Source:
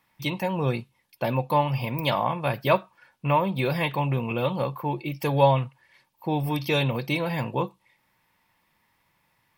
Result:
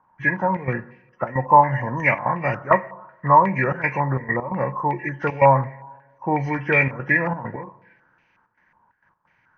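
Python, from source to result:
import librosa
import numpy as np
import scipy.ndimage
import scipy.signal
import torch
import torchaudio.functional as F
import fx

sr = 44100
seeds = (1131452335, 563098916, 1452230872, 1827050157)

y = fx.freq_compress(x, sr, knee_hz=1000.0, ratio=1.5)
y = fx.step_gate(y, sr, bpm=133, pattern='xxxxx.xxx.x.xx', floor_db=-12.0, edge_ms=4.5)
y = fx.rev_double_slope(y, sr, seeds[0], early_s=0.84, late_s=2.2, knee_db=-18, drr_db=13.5)
y = fx.filter_held_lowpass(y, sr, hz=5.5, low_hz=990.0, high_hz=2500.0)
y = y * 10.0 ** (2.0 / 20.0)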